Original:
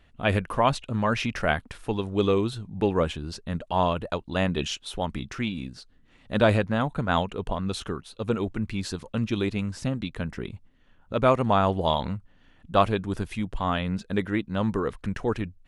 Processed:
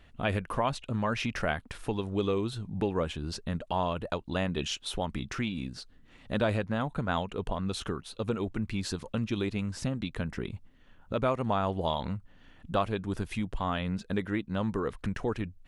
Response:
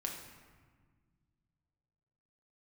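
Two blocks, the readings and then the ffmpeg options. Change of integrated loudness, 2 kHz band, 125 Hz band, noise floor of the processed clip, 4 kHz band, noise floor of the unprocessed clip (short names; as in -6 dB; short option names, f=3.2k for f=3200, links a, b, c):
-5.5 dB, -5.5 dB, -4.5 dB, -57 dBFS, -4.0 dB, -58 dBFS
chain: -af "acompressor=threshold=-34dB:ratio=2,volume=2dB"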